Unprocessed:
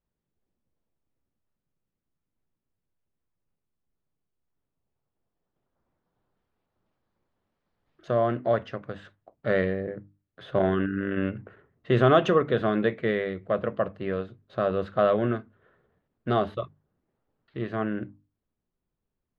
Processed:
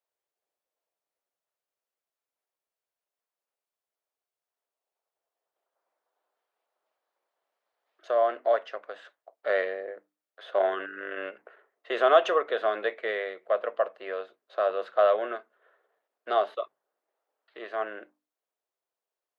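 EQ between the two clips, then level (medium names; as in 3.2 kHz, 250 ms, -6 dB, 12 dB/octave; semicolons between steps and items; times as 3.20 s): high-pass 490 Hz 24 dB/octave; peaking EQ 670 Hz +3.5 dB 0.28 oct; 0.0 dB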